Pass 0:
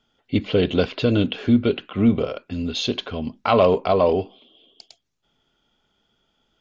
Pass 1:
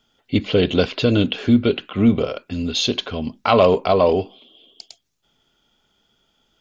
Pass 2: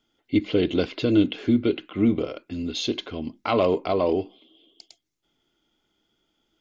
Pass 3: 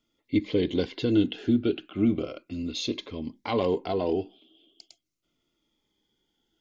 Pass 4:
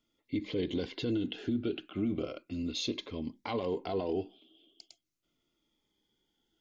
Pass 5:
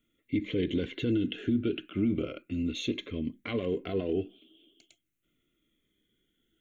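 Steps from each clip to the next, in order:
high shelf 5200 Hz +9 dB; gain +2 dB
small resonant body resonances 320/2100 Hz, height 12 dB, ringing for 50 ms; gain -8.5 dB
cascading phaser falling 0.37 Hz; gain -2.5 dB
limiter -21 dBFS, peak gain reduction 10 dB; gain -3 dB
fixed phaser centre 2100 Hz, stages 4; gain +5.5 dB

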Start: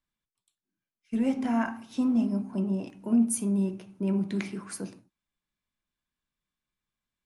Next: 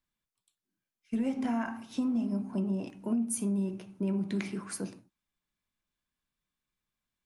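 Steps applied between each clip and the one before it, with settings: compressor 6:1, threshold -27 dBFS, peak gain reduction 8.5 dB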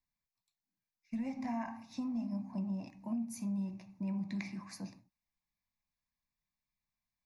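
fixed phaser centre 2100 Hz, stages 8; gain -3 dB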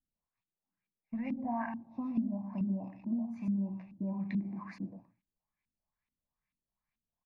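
echo 0.121 s -10 dB; LFO low-pass saw up 2.3 Hz 230–2900 Hz

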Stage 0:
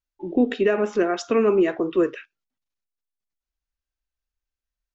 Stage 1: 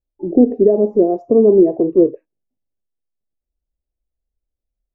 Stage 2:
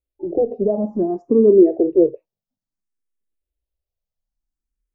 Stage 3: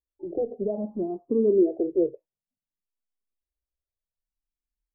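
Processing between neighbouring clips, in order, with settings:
inverse Chebyshev low-pass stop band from 1300 Hz, stop band 40 dB; gain +8.5 dB
endless phaser +0.58 Hz
LPF 1000 Hz 12 dB/oct; gain -9 dB

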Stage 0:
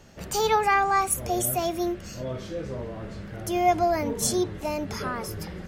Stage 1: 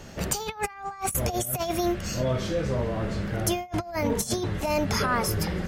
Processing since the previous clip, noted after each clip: dynamic EQ 350 Hz, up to -6 dB, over -39 dBFS, Q 1.3; negative-ratio compressor -31 dBFS, ratio -0.5; gain +4.5 dB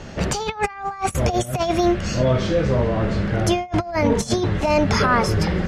air absorption 87 m; gain +8 dB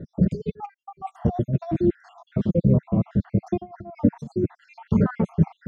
random spectral dropouts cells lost 64%; band-pass 180 Hz, Q 1.7; gain +8 dB

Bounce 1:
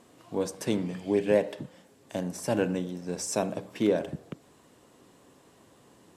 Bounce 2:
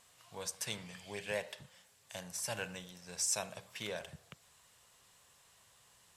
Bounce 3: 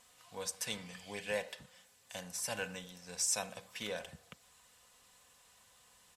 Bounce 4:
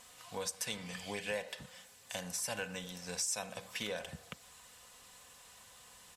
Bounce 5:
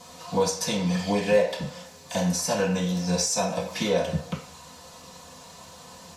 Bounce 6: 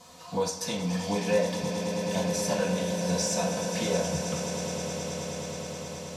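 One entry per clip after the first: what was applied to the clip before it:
passive tone stack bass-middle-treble 10-0-10; gain +1.5 dB
comb 4 ms, depth 45%
compressor 2.5:1, threshold -45 dBFS, peak gain reduction 11 dB; gain +7 dB
reverb RT60 0.40 s, pre-delay 3 ms, DRR -10 dB
swelling echo 0.106 s, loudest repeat 8, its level -12 dB; gain -5 dB

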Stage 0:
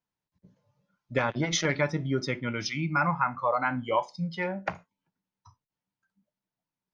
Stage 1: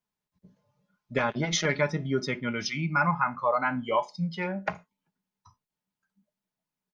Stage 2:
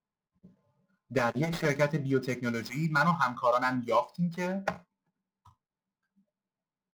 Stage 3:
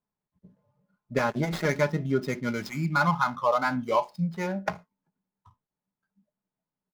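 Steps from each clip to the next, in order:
comb 4.8 ms, depth 37%
median filter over 15 samples
mismatched tape noise reduction decoder only; gain +2 dB

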